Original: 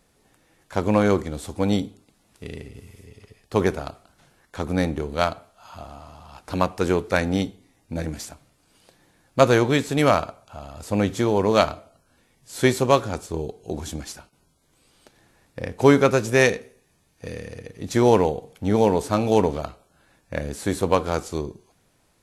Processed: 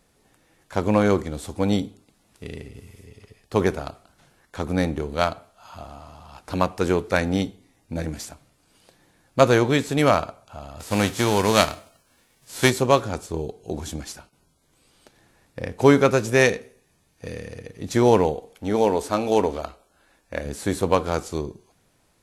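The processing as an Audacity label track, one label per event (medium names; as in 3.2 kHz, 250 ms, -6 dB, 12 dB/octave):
10.790000	12.690000	formants flattened exponent 0.6
18.340000	20.460000	peaking EQ 130 Hz -12.5 dB 1 oct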